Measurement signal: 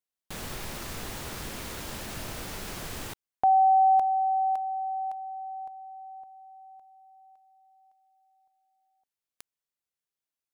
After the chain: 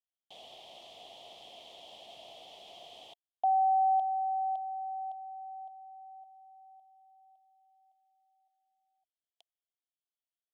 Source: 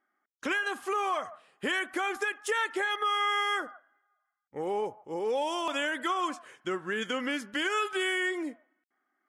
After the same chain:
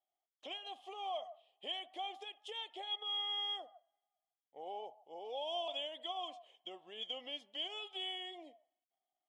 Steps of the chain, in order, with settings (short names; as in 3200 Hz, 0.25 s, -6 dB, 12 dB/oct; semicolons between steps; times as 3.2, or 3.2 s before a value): double band-pass 1500 Hz, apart 2.2 oct; gain -1 dB